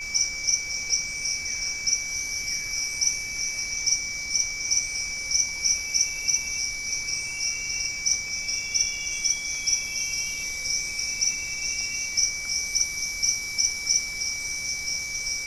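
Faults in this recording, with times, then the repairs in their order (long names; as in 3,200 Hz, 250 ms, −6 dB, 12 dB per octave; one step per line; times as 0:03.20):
whistle 2,300 Hz −32 dBFS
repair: notch filter 2,300 Hz, Q 30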